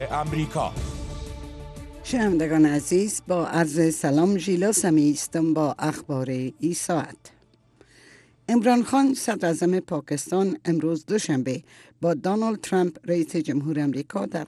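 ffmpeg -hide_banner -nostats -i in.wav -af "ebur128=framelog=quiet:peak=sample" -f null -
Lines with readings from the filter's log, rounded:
Integrated loudness:
  I:         -23.7 LUFS
  Threshold: -34.4 LUFS
Loudness range:
  LRA:         4.3 LU
  Threshold: -44.0 LUFS
  LRA low:   -25.9 LUFS
  LRA high:  -21.6 LUFS
Sample peak:
  Peak:       -8.3 dBFS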